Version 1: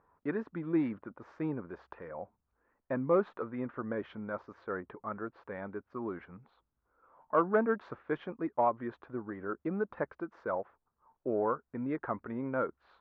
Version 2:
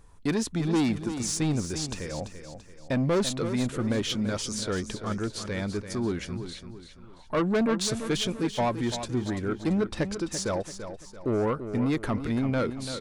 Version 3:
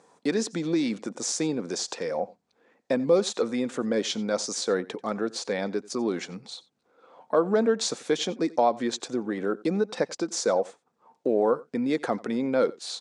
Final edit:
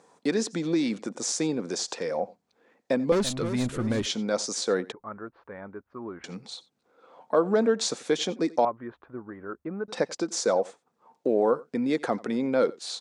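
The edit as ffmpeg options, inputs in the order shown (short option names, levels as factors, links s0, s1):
-filter_complex "[0:a]asplit=2[s0][s1];[2:a]asplit=4[s2][s3][s4][s5];[s2]atrim=end=3.122[s6];[1:a]atrim=start=3.118:end=4.062[s7];[s3]atrim=start=4.058:end=4.922[s8];[s0]atrim=start=4.918:end=6.242[s9];[s4]atrim=start=6.238:end=8.652[s10];[s1]atrim=start=8.648:end=9.882[s11];[s5]atrim=start=9.878[s12];[s6][s7]acrossfade=d=0.004:c1=hsin:c2=hsin[s13];[s13][s8]acrossfade=d=0.004:c1=hsin:c2=hsin[s14];[s14][s9]acrossfade=d=0.004:c1=hsin:c2=hsin[s15];[s15][s10]acrossfade=d=0.004:c1=hsin:c2=hsin[s16];[s16][s11]acrossfade=d=0.004:c1=hsin:c2=hsin[s17];[s17][s12]acrossfade=d=0.004:c1=hsin:c2=hsin"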